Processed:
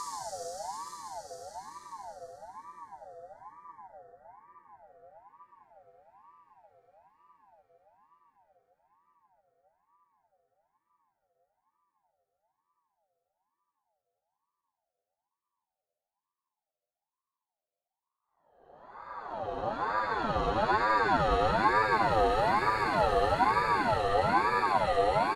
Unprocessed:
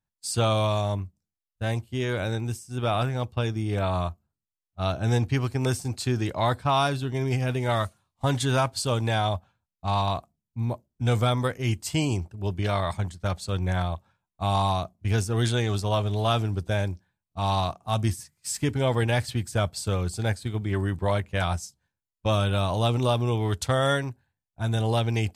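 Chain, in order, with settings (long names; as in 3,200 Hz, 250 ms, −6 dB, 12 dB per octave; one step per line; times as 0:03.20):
fade-out on the ending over 5.76 s
tilt shelving filter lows +3.5 dB, about 710 Hz
hum removal 45.14 Hz, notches 28
extreme stretch with random phases 33×, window 0.10 s, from 0:21.65
far-end echo of a speakerphone 100 ms, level −8 dB
ring modulator whose carrier an LFO sweeps 840 Hz, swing 30%, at 1.1 Hz
level +2 dB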